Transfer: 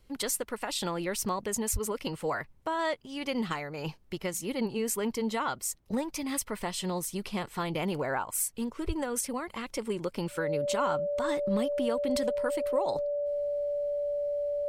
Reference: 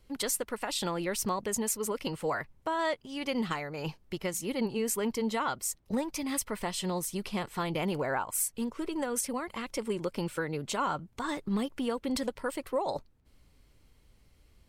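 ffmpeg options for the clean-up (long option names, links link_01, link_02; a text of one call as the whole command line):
ffmpeg -i in.wav -filter_complex "[0:a]bandreject=frequency=580:width=30,asplit=3[link_01][link_02][link_03];[link_01]afade=type=out:start_time=1.72:duration=0.02[link_04];[link_02]highpass=frequency=140:width=0.5412,highpass=frequency=140:width=1.3066,afade=type=in:start_time=1.72:duration=0.02,afade=type=out:start_time=1.84:duration=0.02[link_05];[link_03]afade=type=in:start_time=1.84:duration=0.02[link_06];[link_04][link_05][link_06]amix=inputs=3:normalize=0,asplit=3[link_07][link_08][link_09];[link_07]afade=type=out:start_time=8.86:duration=0.02[link_10];[link_08]highpass=frequency=140:width=0.5412,highpass=frequency=140:width=1.3066,afade=type=in:start_time=8.86:duration=0.02,afade=type=out:start_time=8.98:duration=0.02[link_11];[link_09]afade=type=in:start_time=8.98:duration=0.02[link_12];[link_10][link_11][link_12]amix=inputs=3:normalize=0" out.wav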